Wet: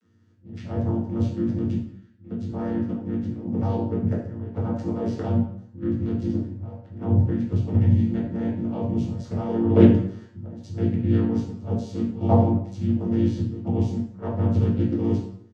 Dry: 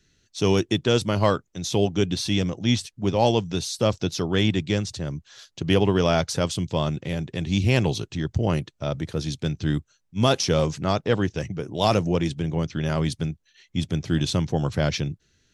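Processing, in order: whole clip reversed; fifteen-band EQ 250 Hz +11 dB, 630 Hz +8 dB, 1600 Hz +4 dB, 4000 Hz -6 dB; auto swell 0.204 s; level quantiser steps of 13 dB; vocoder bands 16, saw 114 Hz; harmoniser -3 st -3 dB, +7 st -18 dB; doubler 23 ms -13 dB; plate-style reverb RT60 0.68 s, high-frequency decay 0.8×, DRR -4 dB; Doppler distortion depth 0.18 ms; gain -2 dB

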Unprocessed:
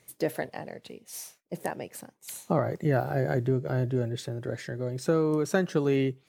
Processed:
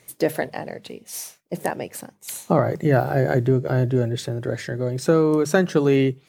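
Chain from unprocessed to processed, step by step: notches 50/100/150/200 Hz; gain +7.5 dB

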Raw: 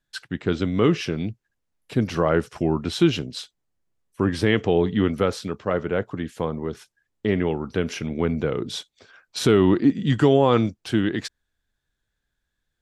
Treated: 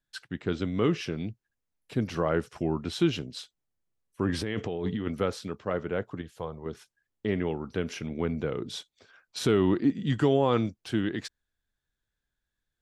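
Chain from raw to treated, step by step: 4.29–5.07 negative-ratio compressor -24 dBFS, ratio -1; 6.21–6.66 graphic EQ 250/2000/8000 Hz -12/-7/-4 dB; gain -6.5 dB

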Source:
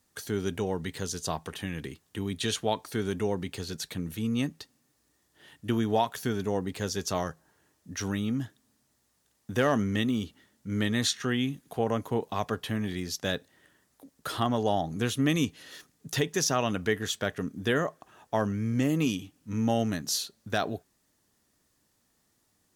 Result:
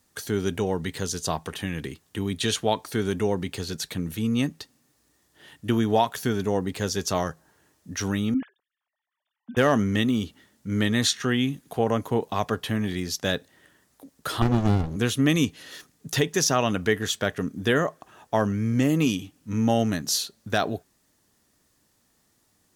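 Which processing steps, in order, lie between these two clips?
8.34–9.57 sine-wave speech; 14.42–14.96 running maximum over 65 samples; gain +4.5 dB

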